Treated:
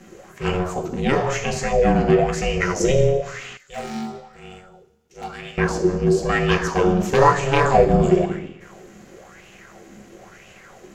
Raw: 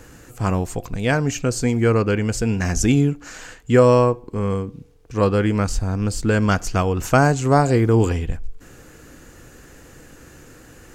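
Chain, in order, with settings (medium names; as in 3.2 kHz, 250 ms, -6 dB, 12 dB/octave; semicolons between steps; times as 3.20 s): one-sided wavefolder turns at -9 dBFS; bass shelf 63 Hz -8 dB; reverberation RT60 1.0 s, pre-delay 3 ms, DRR 1 dB; ring modulator 270 Hz; 3.57–5.58 s: pre-emphasis filter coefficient 0.9; sweeping bell 1 Hz 220–2800 Hz +13 dB; trim -7.5 dB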